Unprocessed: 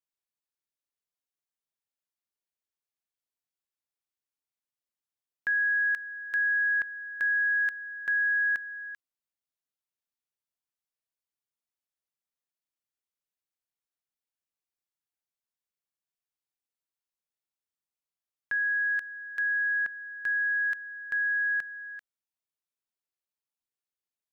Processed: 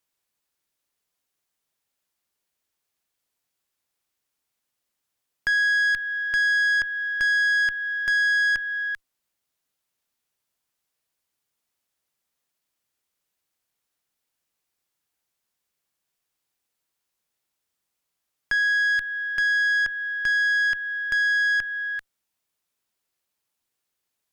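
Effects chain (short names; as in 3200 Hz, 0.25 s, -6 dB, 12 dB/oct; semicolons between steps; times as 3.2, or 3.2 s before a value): in parallel at +2.5 dB: compressor 6:1, threshold -36 dBFS, peak gain reduction 10.5 dB; on the sum: tube stage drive 24 dB, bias 0.3; gain +6 dB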